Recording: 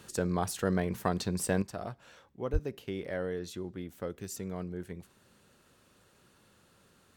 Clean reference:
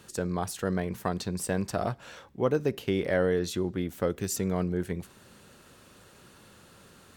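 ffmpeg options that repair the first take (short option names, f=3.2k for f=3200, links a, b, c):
-filter_complex "[0:a]asplit=3[a][b][c];[a]afade=t=out:st=2.52:d=0.02[d];[b]highpass=f=140:w=0.5412,highpass=f=140:w=1.3066,afade=t=in:st=2.52:d=0.02,afade=t=out:st=2.64:d=0.02[e];[c]afade=t=in:st=2.64:d=0.02[f];[d][e][f]amix=inputs=3:normalize=0,asetnsamples=n=441:p=0,asendcmd='1.62 volume volume 9.5dB',volume=0dB"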